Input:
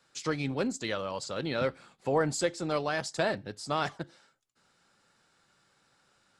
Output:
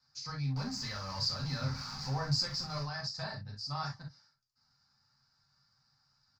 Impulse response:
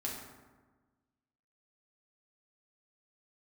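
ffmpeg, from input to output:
-filter_complex "[0:a]asettb=1/sr,asplit=3[link_01][link_02][link_03];[link_01]atrim=end=0.564[link_04];[link_02]atrim=start=0.56:end=2.83,asetpts=PTS-STARTPTS,afade=type=in:duration=0.004:curve=qsin,afade=type=out:start_time=2.266:duration=0.004:curve=qsin,aeval=exprs='val(0)+0.5*0.0299*sgn(val(0))':channel_layout=same[link_05];[link_03]atrim=start=2.826[link_06];[link_04][link_05]acrossfade=duration=0.004:curve1=hsin:curve2=qsin[link_07];[link_07][link_06]acrossfade=duration=0.004:curve1=qsin:curve2=hsin,firequalizer=gain_entry='entry(140,0);entry(330,-27);entry(920,-7);entry(3200,-19);entry(4800,7);entry(8300,-25)':delay=0.05:min_phase=1[link_08];[1:a]atrim=start_sample=2205,atrim=end_sample=3087[link_09];[link_08][link_09]afir=irnorm=-1:irlink=0"

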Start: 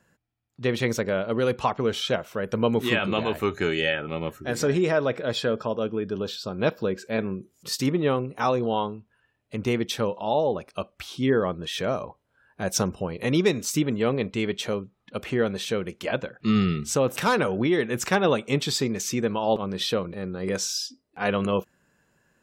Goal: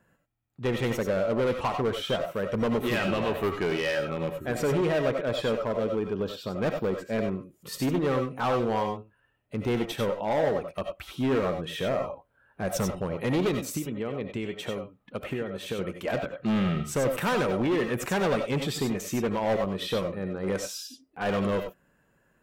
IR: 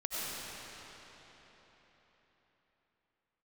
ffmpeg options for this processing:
-filter_complex "[0:a]equalizer=frequency=5400:width=0.89:gain=-11,asettb=1/sr,asplit=3[link_01][link_02][link_03];[link_01]atrim=end=13.674[link_04];[link_02]atrim=start=13.67:end=15.79,asetpts=PTS-STARTPTS,afade=type=in:duration=0.004:curve=qsin,afade=type=out:start_time=2.116:duration=0.004:curve=qsin,acompressor=threshold=-28dB:ratio=12[link_05];[link_03]atrim=start=15.786[link_06];[link_04][link_05]acrossfade=duration=0.004:curve1=hsin:curve2=qsin[link_07];[link_07][link_06]acrossfade=duration=0.004:curve1=qsin:curve2=hsin,asoftclip=type=hard:threshold=-22dB[link_08];[1:a]atrim=start_sample=2205,atrim=end_sample=4410[link_09];[link_08][link_09]afir=irnorm=-1:irlink=0,volume=2.5dB"

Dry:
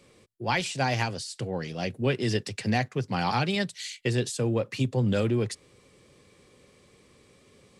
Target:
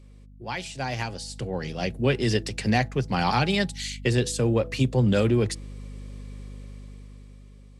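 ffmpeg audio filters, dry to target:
ffmpeg -i in.wav -af "bandreject=frequency=164.2:width_type=h:width=4,bandreject=frequency=328.4:width_type=h:width=4,bandreject=frequency=492.6:width_type=h:width=4,bandreject=frequency=656.8:width_type=h:width=4,bandreject=frequency=821:width_type=h:width=4,aeval=exprs='val(0)+0.00891*(sin(2*PI*50*n/s)+sin(2*PI*2*50*n/s)/2+sin(2*PI*3*50*n/s)/3+sin(2*PI*4*50*n/s)/4+sin(2*PI*5*50*n/s)/5)':channel_layout=same,dynaudnorm=framelen=280:gausssize=9:maxgain=12.5dB,volume=-6.5dB" out.wav

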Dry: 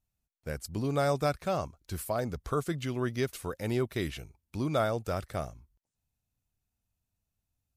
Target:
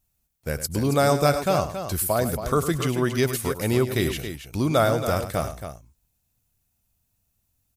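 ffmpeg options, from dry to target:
ffmpeg -i in.wav -filter_complex "[0:a]highshelf=frequency=8000:gain=10.5,asplit=2[link_01][link_02];[link_02]aecho=0:1:102|276:0.266|0.335[link_03];[link_01][link_03]amix=inputs=2:normalize=0,volume=8dB" out.wav

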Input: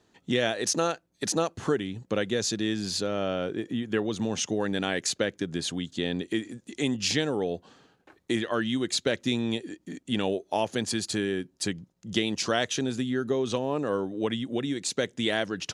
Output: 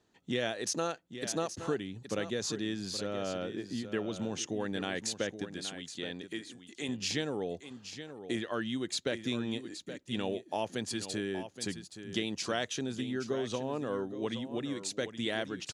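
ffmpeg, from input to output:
ffmpeg -i in.wav -filter_complex "[0:a]asettb=1/sr,asplit=3[link_01][link_02][link_03];[link_01]atrim=end=5.444[link_04];[link_02]atrim=start=5.44:end=6.89,asetpts=PTS-STARTPTS,afade=type=in:duration=0.004:curve=qsin,afade=type=out:start_time=1.446:duration=0.004:curve=qsin,lowshelf=frequency=390:gain=-8.5[link_05];[link_03]atrim=start=6.886[link_06];[link_04][link_05]acrossfade=duration=0.004:curve1=hsin:curve2=qsin[link_07];[link_07][link_06]acrossfade=duration=0.004:curve1=qsin:curve2=hsin,aecho=1:1:822:0.282,volume=-7dB" out.wav

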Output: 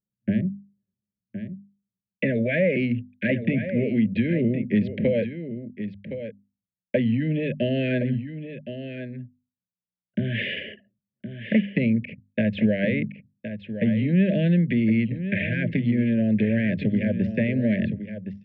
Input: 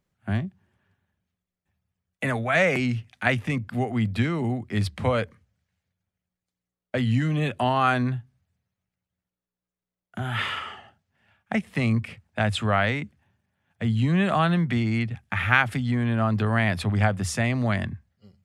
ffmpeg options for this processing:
ffmpeg -i in.wav -af "deesser=0.8,anlmdn=0.631,asuperstop=centerf=1000:order=20:qfactor=0.98,equalizer=frequency=500:width_type=o:width=0.27:gain=2.5,acompressor=threshold=-27dB:ratio=6,highpass=150,equalizer=frequency=200:width_type=q:width=4:gain=8,equalizer=frequency=730:width_type=q:width=4:gain=6,equalizer=frequency=1200:width_type=q:width=4:gain=-6,equalizer=frequency=1800:width_type=q:width=4:gain=-6,lowpass=frequency=2600:width=0.5412,lowpass=frequency=2600:width=1.3066,bandreject=frequency=50:width_type=h:width=6,bandreject=frequency=100:width_type=h:width=6,bandreject=frequency=150:width_type=h:width=6,bandreject=frequency=200:width_type=h:width=6,bandreject=frequency=250:width_type=h:width=6,aecho=1:1:1066:0.299,volume=8.5dB" out.wav

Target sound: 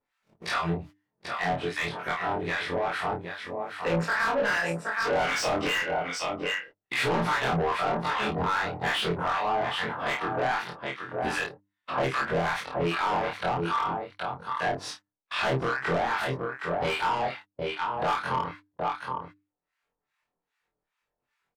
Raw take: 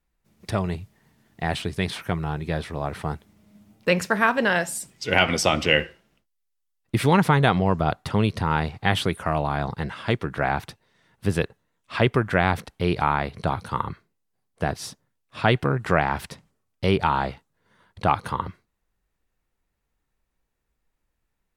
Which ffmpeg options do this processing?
ffmpeg -i in.wav -filter_complex "[0:a]afftfilt=real='re':imag='-im':win_size=2048:overlap=0.75,aecho=1:1:768:0.251,acrossover=split=980[link_01][link_02];[link_01]aeval=exprs='val(0)*(1-1/2+1/2*cos(2*PI*2.5*n/s))':channel_layout=same[link_03];[link_02]aeval=exprs='val(0)*(1-1/2-1/2*cos(2*PI*2.5*n/s))':channel_layout=same[link_04];[link_03][link_04]amix=inputs=2:normalize=0,acompressor=mode=upward:threshold=-43dB:ratio=2.5,highshelf=frequency=6600:gain=-11.5,asplit=2[link_05][link_06];[link_06]highpass=frequency=720:poles=1,volume=29dB,asoftclip=type=tanh:threshold=-11dB[link_07];[link_05][link_07]amix=inputs=2:normalize=0,lowpass=frequency=4400:poles=1,volume=-6dB,acompressor=threshold=-22dB:ratio=3,asplit=2[link_08][link_09];[link_09]adelay=30,volume=-5dB[link_10];[link_08][link_10]amix=inputs=2:normalize=0,agate=range=-29dB:threshold=-39dB:ratio=16:detection=peak,bandreject=frequency=50:width_type=h:width=6,bandreject=frequency=100:width_type=h:width=6,bandreject=frequency=150:width_type=h:width=6,bandreject=frequency=200:width_type=h:width=6,bandreject=frequency=250:width_type=h:width=6,bandreject=frequency=300:width_type=h:width=6,adynamicequalizer=threshold=0.0141:dfrequency=2200:dqfactor=0.7:tfrequency=2200:tqfactor=0.7:attack=5:release=100:ratio=0.375:range=1.5:mode=cutabove:tftype=highshelf,volume=-4dB" out.wav

